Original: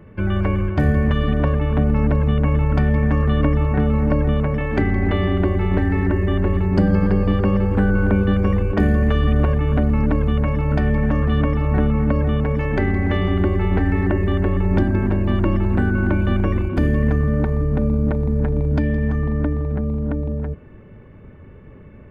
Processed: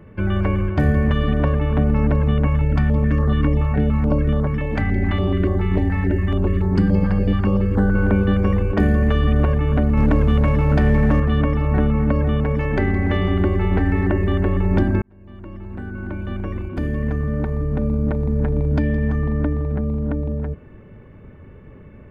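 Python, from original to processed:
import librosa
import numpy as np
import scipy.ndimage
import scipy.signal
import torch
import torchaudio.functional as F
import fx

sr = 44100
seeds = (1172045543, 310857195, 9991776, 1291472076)

y = fx.filter_held_notch(x, sr, hz=7.0, low_hz=360.0, high_hz=2500.0, at=(2.47, 7.95))
y = fx.leveller(y, sr, passes=1, at=(9.97, 11.2))
y = fx.edit(y, sr, fx.fade_in_span(start_s=15.02, length_s=3.54), tone=tone)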